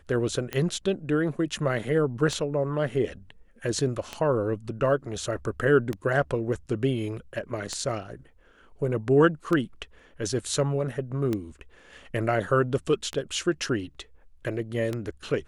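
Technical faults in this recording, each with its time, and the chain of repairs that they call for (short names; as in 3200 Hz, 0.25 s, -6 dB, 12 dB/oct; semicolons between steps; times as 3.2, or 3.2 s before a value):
tick 33 1/3 rpm -15 dBFS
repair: de-click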